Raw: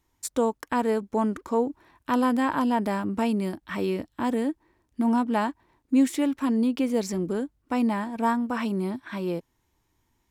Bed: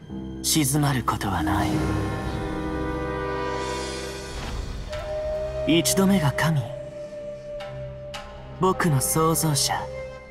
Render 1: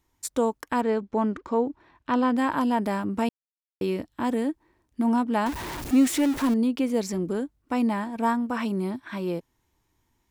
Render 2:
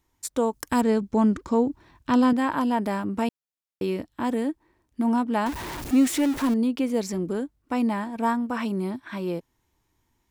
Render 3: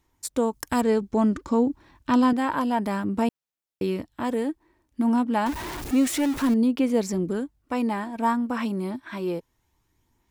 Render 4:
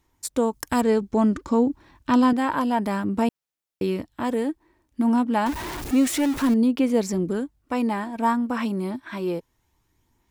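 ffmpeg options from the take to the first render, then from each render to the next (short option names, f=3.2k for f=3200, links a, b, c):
-filter_complex "[0:a]asettb=1/sr,asplit=3[a][b][c];[a]atrim=end=0.814[d];[b]atrim=start=0.81:end=2.37,asetpts=PTS-STARTPTS,afade=t=in:d=0.004:c=qsin,afade=t=out:st=1.556:d=0.004:c=qsin,lowpass=4.6k[e];[c]atrim=start=2.366[f];[d][e]acrossfade=d=0.004:c1=hsin:c2=qsin[g];[g][f]acrossfade=d=0.004:c1=qsin:c2=hsin,asettb=1/sr,asplit=3[h][i][j];[h]atrim=end=5.464[k];[i]atrim=start=5.46:end=6.54,asetpts=PTS-STARTPTS,afade=t=in:d=0.004:c=qsin,afade=t=out:st=1.076:d=0.004:c=qsin,aeval=exprs='val(0)+0.5*0.0398*sgn(val(0))':c=same[l];[j]atrim=start=6.536[m];[k][l]acrossfade=d=0.004:c1=hsin:c2=qsin[n];[n][m]acrossfade=d=0.004:c1=qsin:c2=hsin,asplit=3[o][p][q];[o]atrim=end=3.29,asetpts=PTS-STARTPTS,afade=t=out:st=3.286:d=0.004:c=hsin[r];[p]atrim=start=3.29:end=3.81,asetpts=PTS-STARTPTS,volume=0[s];[q]atrim=start=3.81,asetpts=PTS-STARTPTS,afade=t=in:d=0.004:c=hsin[t];[r][s][t]concat=n=3:v=0:a=1"
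-filter_complex "[0:a]asettb=1/sr,asplit=3[a][b][c];[a]atrim=end=0.534[d];[b]atrim=start=0.53:end=2.33,asetpts=PTS-STARTPTS,afade=t=in:d=0.004:c=qsin,afade=t=out:st=1.796:d=0.004:c=qsin,bass=f=250:g=10,treble=f=4k:g=12[e];[c]atrim=start=2.326[f];[d][e]acrossfade=d=0.004:c1=hsin:c2=qsin[g];[g][f]acrossfade=d=0.004:c1=qsin:c2=hsin"
-af "aphaser=in_gain=1:out_gain=1:delay=3.7:decay=0.26:speed=0.29:type=sinusoidal"
-af "volume=1.5dB"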